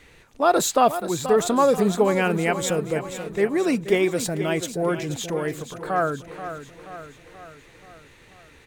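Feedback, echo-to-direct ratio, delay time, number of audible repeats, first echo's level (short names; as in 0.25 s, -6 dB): 55%, -9.5 dB, 0.481 s, 5, -11.0 dB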